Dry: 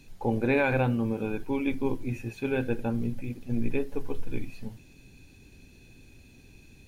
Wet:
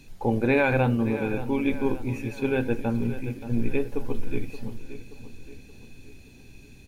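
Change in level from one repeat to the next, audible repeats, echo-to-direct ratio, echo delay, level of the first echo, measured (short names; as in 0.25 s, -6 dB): -6.0 dB, 4, -12.0 dB, 0.576 s, -13.0 dB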